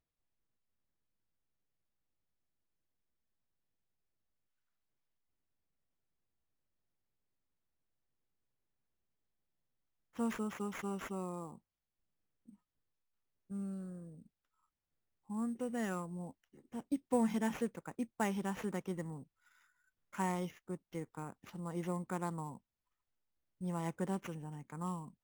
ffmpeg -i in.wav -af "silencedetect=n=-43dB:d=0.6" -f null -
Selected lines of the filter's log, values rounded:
silence_start: 0.00
silence_end: 10.19 | silence_duration: 10.19
silence_start: 11.54
silence_end: 13.51 | silence_duration: 1.98
silence_start: 14.03
silence_end: 15.30 | silence_duration: 1.27
silence_start: 19.20
silence_end: 20.15 | silence_duration: 0.94
silence_start: 22.56
silence_end: 23.61 | silence_duration: 1.06